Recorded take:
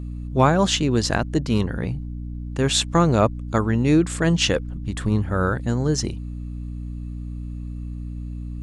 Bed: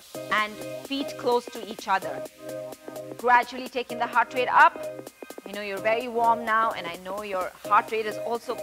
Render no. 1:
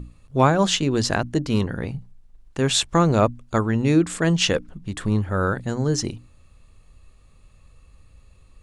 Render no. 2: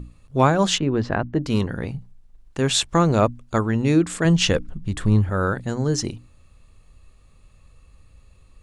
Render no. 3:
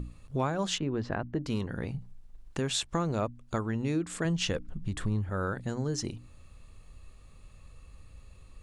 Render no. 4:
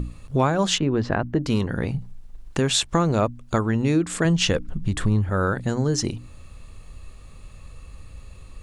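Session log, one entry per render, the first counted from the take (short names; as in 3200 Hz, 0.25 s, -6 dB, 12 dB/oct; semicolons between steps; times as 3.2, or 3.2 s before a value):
notches 60/120/180/240/300 Hz
0.78–1.43 LPF 1900 Hz; 4.25–5.3 low shelf 120 Hz +10 dB
compressor 2.5:1, threshold -33 dBFS, peak gain reduction 14 dB
gain +9.5 dB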